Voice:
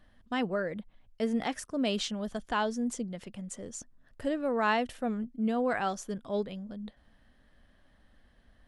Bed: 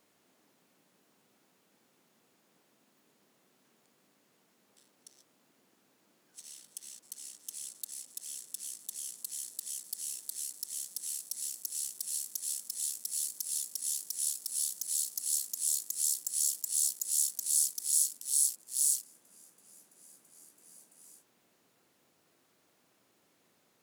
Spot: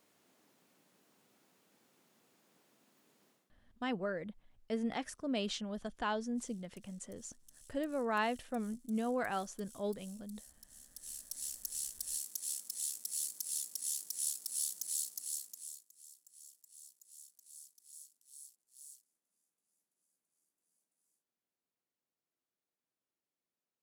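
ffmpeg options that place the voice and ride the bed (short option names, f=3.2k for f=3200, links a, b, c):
-filter_complex "[0:a]adelay=3500,volume=-6dB[a];[1:a]volume=14.5dB,afade=t=out:st=3.28:d=0.23:silence=0.125893,afade=t=in:st=10.8:d=0.7:silence=0.16788,afade=t=out:st=14.84:d=1.01:silence=0.0707946[b];[a][b]amix=inputs=2:normalize=0"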